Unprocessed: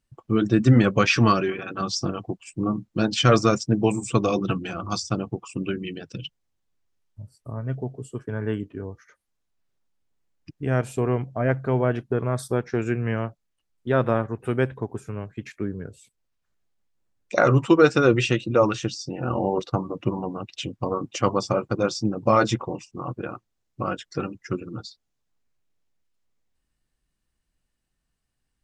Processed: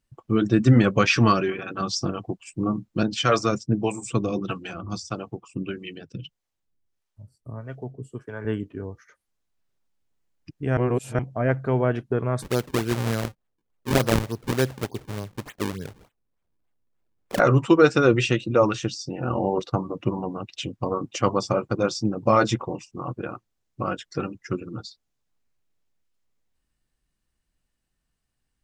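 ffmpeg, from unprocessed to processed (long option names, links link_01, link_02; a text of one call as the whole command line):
ffmpeg -i in.wav -filter_complex "[0:a]asettb=1/sr,asplit=3[link_01][link_02][link_03];[link_01]atrim=end=3.034[link_04];[link_02]atrim=start=3.03:end=8.45,asetpts=PTS-STARTPTS,afade=type=in:duration=0.004:curve=qsin,afade=type=out:start_time=5.416:duration=0.004:curve=qsin,acrossover=split=430[link_05][link_06];[link_05]aeval=exprs='val(0)*(1-0.7/2+0.7/2*cos(2*PI*1.6*n/s))':channel_layout=same[link_07];[link_06]aeval=exprs='val(0)*(1-0.7/2-0.7/2*cos(2*PI*1.6*n/s))':channel_layout=same[link_08];[link_07][link_08]amix=inputs=2:normalize=0[link_09];[link_03]atrim=start=8.446[link_10];[link_04][link_09]acrossfade=duration=0.004:curve1=hsin:curve2=qsin[link_11];[link_11][link_10]acrossfade=duration=0.004:curve1=qsin:curve2=hsin,asplit=3[link_12][link_13][link_14];[link_12]afade=type=out:start_time=12.41:duration=0.02[link_15];[link_13]acrusher=samples=38:mix=1:aa=0.000001:lfo=1:lforange=60.8:lforate=3.4,afade=type=in:start_time=12.41:duration=0.02,afade=type=out:start_time=17.38:duration=0.02[link_16];[link_14]afade=type=in:start_time=17.38:duration=0.02[link_17];[link_15][link_16][link_17]amix=inputs=3:normalize=0,asplit=3[link_18][link_19][link_20];[link_18]atrim=end=10.772[link_21];[link_19]atrim=start=10.768:end=11.192,asetpts=PTS-STARTPTS,areverse[link_22];[link_20]atrim=start=11.188[link_23];[link_21][link_22]acrossfade=duration=0.004:curve1=hsin:curve2=hsin[link_24];[link_24][link_23]acrossfade=duration=0.004:curve1=hsin:curve2=hsin" out.wav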